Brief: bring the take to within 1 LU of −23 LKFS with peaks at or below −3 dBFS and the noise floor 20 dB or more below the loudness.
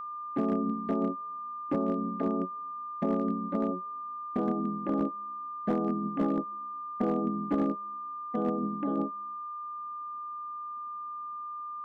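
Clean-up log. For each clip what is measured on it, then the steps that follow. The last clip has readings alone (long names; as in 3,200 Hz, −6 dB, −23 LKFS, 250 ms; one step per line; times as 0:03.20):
share of clipped samples 0.4%; peaks flattened at −21.0 dBFS; interfering tone 1,200 Hz; level of the tone −36 dBFS; integrated loudness −32.5 LKFS; sample peak −21.0 dBFS; target loudness −23.0 LKFS
→ clipped peaks rebuilt −21 dBFS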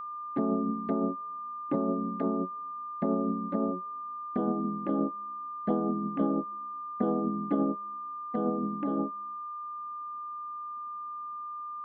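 share of clipped samples 0.0%; interfering tone 1,200 Hz; level of the tone −36 dBFS
→ notch filter 1,200 Hz, Q 30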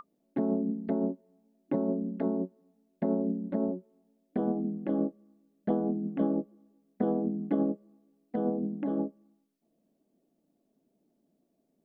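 interfering tone none found; integrated loudness −32.0 LKFS; sample peak −16.0 dBFS; target loudness −23.0 LKFS
→ level +9 dB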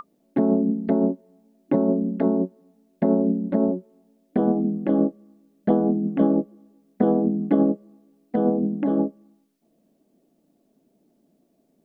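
integrated loudness −23.0 LKFS; sample peak −7.0 dBFS; background noise floor −67 dBFS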